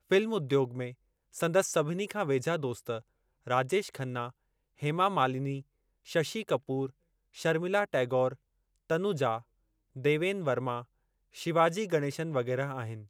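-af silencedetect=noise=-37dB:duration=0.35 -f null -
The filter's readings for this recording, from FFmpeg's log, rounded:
silence_start: 0.90
silence_end: 1.36 | silence_duration: 0.46
silence_start: 2.98
silence_end: 3.47 | silence_duration: 0.49
silence_start: 4.28
silence_end: 4.82 | silence_duration: 0.55
silence_start: 5.60
silence_end: 6.11 | silence_duration: 0.51
silence_start: 6.86
silence_end: 7.39 | silence_duration: 0.52
silence_start: 8.33
silence_end: 8.90 | silence_duration: 0.57
silence_start: 9.38
silence_end: 9.97 | silence_duration: 0.59
silence_start: 10.81
silence_end: 11.37 | silence_duration: 0.57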